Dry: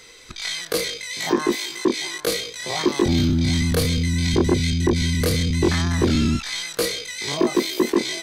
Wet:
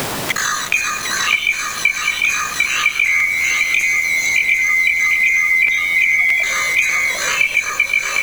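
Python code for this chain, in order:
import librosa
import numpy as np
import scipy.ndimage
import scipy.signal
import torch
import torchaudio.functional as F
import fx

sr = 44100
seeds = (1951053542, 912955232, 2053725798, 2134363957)

y = fx.band_swap(x, sr, width_hz=2000)
y = fx.steep_highpass(y, sr, hz=fx.steps((0.0, 1000.0), (3.25, 2300.0), (4.48, 410.0)), slope=48)
y = fx.spec_gate(y, sr, threshold_db=-20, keep='strong')
y = fx.echo_feedback(y, sr, ms=97, feedback_pct=28, wet_db=-11.5)
y = fx.quant_dither(y, sr, seeds[0], bits=6, dither='none')
y = fx.high_shelf(y, sr, hz=6200.0, db=-5.5)
y = y + 10.0 ** (-5.5 / 20.0) * np.pad(y, (int(749 * sr / 1000.0), 0))[:len(y)]
y = fx.dmg_noise_colour(y, sr, seeds[1], colour='pink', level_db=-47.0)
y = fx.buffer_crackle(y, sr, first_s=0.7, period_s=0.62, block=512, kind='repeat')
y = fx.band_squash(y, sr, depth_pct=100)
y = y * librosa.db_to_amplitude(4.0)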